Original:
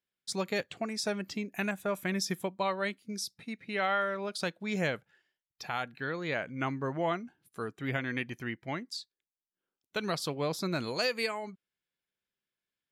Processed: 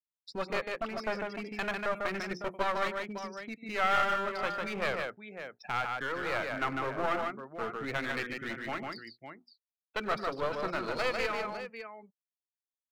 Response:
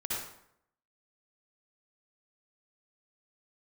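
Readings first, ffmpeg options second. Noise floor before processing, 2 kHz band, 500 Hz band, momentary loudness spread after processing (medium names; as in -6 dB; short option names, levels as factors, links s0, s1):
under -85 dBFS, +1.5 dB, 0.0 dB, 11 LU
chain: -filter_complex "[0:a]bandreject=f=60:t=h:w=6,bandreject=f=120:t=h:w=6,bandreject=f=180:t=h:w=6,bandreject=f=240:t=h:w=6,bandreject=f=300:t=h:w=6,bandreject=f=360:t=h:w=6,bandreject=f=420:t=h:w=6,acrossover=split=3100[s0][s1];[s0]lowshelf=f=65:g=-9.5[s2];[s1]acompressor=threshold=0.00251:ratio=4[s3];[s2][s3]amix=inputs=2:normalize=0,aeval=exprs='sgn(val(0))*max(abs(val(0))-0.00141,0)':c=same,afftdn=nr=28:nf=-46,acrossover=split=310|3000[s4][s5][s6];[s4]acompressor=threshold=0.00501:ratio=5[s7];[s7][s5][s6]amix=inputs=3:normalize=0,aecho=1:1:96|149|555:0.1|0.596|0.251,aeval=exprs='clip(val(0),-1,0.0106)':c=same,adynamicequalizer=threshold=0.00178:dfrequency=1300:dqfactor=5.9:tfrequency=1300:tqfactor=5.9:attack=5:release=100:ratio=0.375:range=3.5:mode=boostabove:tftype=bell,volume=1.41"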